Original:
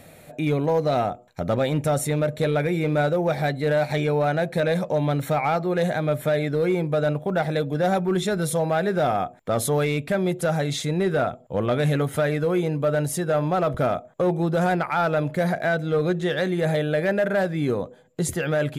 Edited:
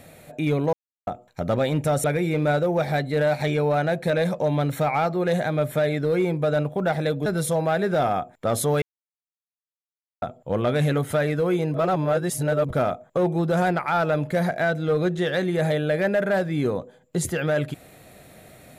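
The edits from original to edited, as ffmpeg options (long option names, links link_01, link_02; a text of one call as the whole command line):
ffmpeg -i in.wav -filter_complex "[0:a]asplit=9[link_01][link_02][link_03][link_04][link_05][link_06][link_07][link_08][link_09];[link_01]atrim=end=0.73,asetpts=PTS-STARTPTS,afade=type=out:start_time=0.726:duration=0.004:curve=hsin[link_10];[link_02]atrim=start=0.73:end=1.07,asetpts=PTS-STARTPTS,volume=0[link_11];[link_03]atrim=start=1.07:end=2.042,asetpts=PTS-STARTPTS,afade=type=in:duration=0.004:curve=hsin[link_12];[link_04]atrim=start=2.538:end=7.762[link_13];[link_05]atrim=start=8.298:end=9.86,asetpts=PTS-STARTPTS,afade=type=out:start_time=1.558:duration=0.004:curve=hsin[link_14];[link_06]atrim=start=9.86:end=11.26,asetpts=PTS-STARTPTS,volume=0[link_15];[link_07]atrim=start=11.26:end=12.782,asetpts=PTS-STARTPTS,afade=type=in:duration=0.004:curve=hsin[link_16];[link_08]atrim=start=12.778:end=13.732,asetpts=PTS-STARTPTS,areverse[link_17];[link_09]atrim=start=13.728[link_18];[link_10][link_11][link_12]concat=n=3:v=0:a=1[link_19];[link_19][link_13]acrossfade=duration=0.004:curve1=hsin:curve2=hsin[link_20];[link_14][link_15][link_16]concat=n=3:v=0:a=1[link_21];[link_20][link_21]acrossfade=duration=0.004:curve1=hsin:curve2=hsin[link_22];[link_22][link_17]acrossfade=duration=0.004:curve1=hsin:curve2=hsin[link_23];[link_23][link_18]acrossfade=duration=0.004:curve1=hsin:curve2=hsin" out.wav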